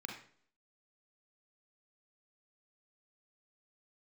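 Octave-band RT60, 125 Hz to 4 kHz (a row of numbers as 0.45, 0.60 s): 0.55, 0.60, 0.60, 0.50, 0.50, 0.50 s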